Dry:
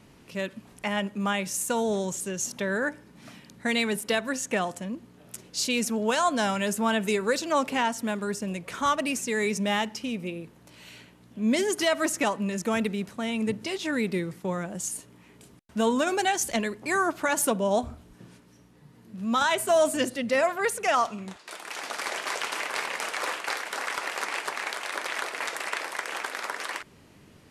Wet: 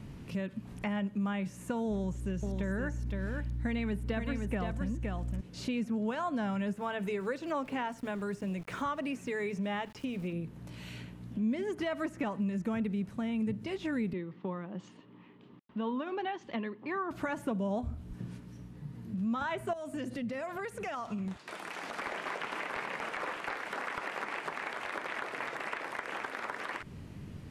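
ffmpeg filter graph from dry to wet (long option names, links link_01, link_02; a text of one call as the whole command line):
ffmpeg -i in.wav -filter_complex "[0:a]asettb=1/sr,asplit=3[link_01][link_02][link_03];[link_01]atrim=end=1.914[link_04];[link_02]atrim=start=1.91:end=5.41,asetpts=PTS-STARTPTS,afade=type=in:duration=0.004:curve=qsin,afade=type=out:start_time=3.496:duration=0.004:curve=qsin,aeval=exprs='val(0)+0.00708*(sin(2*PI*60*n/s)+sin(2*PI*2*60*n/s)/2+sin(2*PI*3*60*n/s)/3+sin(2*PI*4*60*n/s)/4+sin(2*PI*5*60*n/s)/5)':channel_layout=same,aecho=1:1:517:0.501,atrim=end_sample=154350[link_05];[link_03]atrim=start=5.406[link_06];[link_04][link_05]acrossfade=duration=0.004:curve1=hsin:curve2=qsin[link_07];[link_07][link_06]acrossfade=duration=0.004:curve1=qsin:curve2=hsin,asettb=1/sr,asplit=3[link_08][link_09][link_10];[link_08]atrim=end=6.734[link_11];[link_09]atrim=start=6.73:end=10.33,asetpts=PTS-STARTPTS,afade=type=in:duration=0.004:curve=qsin,afade=type=out:start_time=3.596:duration=0.004:curve=qsin,lowshelf=frequency=120:gain=-11,bandreject=frequency=220:width=5.2,aeval=exprs='val(0)*gte(abs(val(0)),0.00531)':channel_layout=same[link_12];[link_10]atrim=start=10.326[link_13];[link_11][link_12]acrossfade=duration=0.004:curve1=hsin:curve2=qsin[link_14];[link_14][link_13]acrossfade=duration=0.004:curve1=qsin:curve2=hsin,asettb=1/sr,asplit=3[link_15][link_16][link_17];[link_15]atrim=end=14.134[link_18];[link_16]atrim=start=14.13:end=17.11,asetpts=PTS-STARTPTS,afade=type=in:duration=0.004:curve=qsin,afade=type=out:start_time=2.976:duration=0.004:curve=qsin,tremolo=f=2.8:d=0.31,highpass=310,equalizer=frequency=470:width_type=q:width=4:gain=-3,equalizer=frequency=670:width_type=q:width=4:gain=-7,equalizer=frequency=1100:width_type=q:width=4:gain=3,equalizer=frequency=1500:width_type=q:width=4:gain=-7,equalizer=frequency=2300:width_type=q:width=4:gain=-6,lowpass=frequency=3200:width=0.5412,lowpass=frequency=3200:width=1.3066[link_19];[link_17]atrim=start=17.106[link_20];[link_18][link_19]acrossfade=duration=0.004:curve1=hsin:curve2=qsin[link_21];[link_21][link_20]acrossfade=duration=0.004:curve1=qsin:curve2=hsin,asettb=1/sr,asplit=3[link_22][link_23][link_24];[link_22]atrim=end=19.734[link_25];[link_23]atrim=start=19.73:end=21.98,asetpts=PTS-STARTPTS,afade=type=in:duration=0.004:curve=qsin,afade=type=out:start_time=2.246:duration=0.004:curve=qsin,highpass=47,acompressor=threshold=-35dB:ratio=3:attack=3.2:release=140:knee=1:detection=peak[link_26];[link_24]atrim=start=21.976[link_27];[link_25][link_26]acrossfade=duration=0.004:curve1=hsin:curve2=qsin[link_28];[link_28][link_27]acrossfade=duration=0.004:curve1=qsin:curve2=hsin,acrossover=split=2800[link_29][link_30];[link_30]acompressor=threshold=-46dB:ratio=4:attack=1:release=60[link_31];[link_29][link_31]amix=inputs=2:normalize=0,bass=frequency=250:gain=13,treble=frequency=4000:gain=-4,acompressor=threshold=-36dB:ratio=2.5" out.wav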